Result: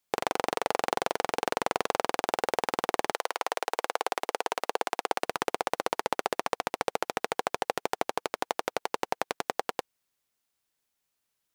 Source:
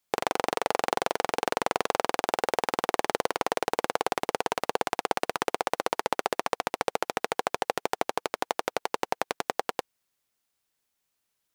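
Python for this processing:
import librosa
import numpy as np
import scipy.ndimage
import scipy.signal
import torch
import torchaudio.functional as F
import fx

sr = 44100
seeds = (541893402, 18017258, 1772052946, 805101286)

y = fx.highpass(x, sr, hz=fx.line((3.12, 640.0), (5.22, 270.0)), slope=12, at=(3.12, 5.22), fade=0.02)
y = y * 10.0 ** (-1.5 / 20.0)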